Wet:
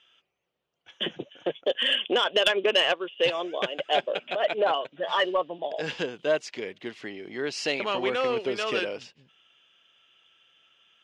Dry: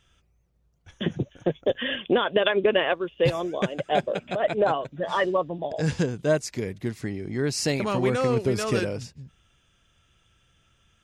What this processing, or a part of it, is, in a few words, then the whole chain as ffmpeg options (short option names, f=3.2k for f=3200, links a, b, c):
intercom: -af "highpass=420,lowpass=4.2k,equalizer=f=3k:t=o:w=0.46:g=11,asoftclip=type=tanh:threshold=-11.5dB"